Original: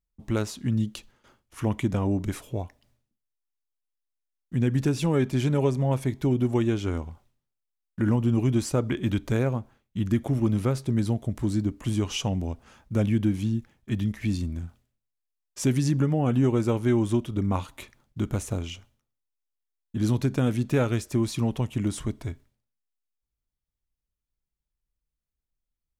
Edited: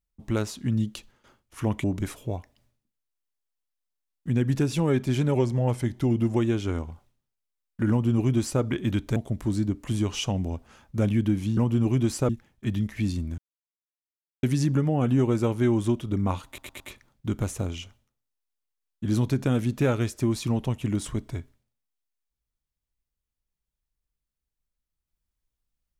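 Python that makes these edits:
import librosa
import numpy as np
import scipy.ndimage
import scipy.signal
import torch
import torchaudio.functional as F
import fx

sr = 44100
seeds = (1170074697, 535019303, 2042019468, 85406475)

y = fx.edit(x, sr, fx.cut(start_s=1.84, length_s=0.26),
    fx.speed_span(start_s=5.61, length_s=0.94, speed=0.93),
    fx.duplicate(start_s=8.09, length_s=0.72, to_s=13.54),
    fx.cut(start_s=9.35, length_s=1.78),
    fx.silence(start_s=14.63, length_s=1.05),
    fx.stutter(start_s=17.72, slice_s=0.11, count=4), tone=tone)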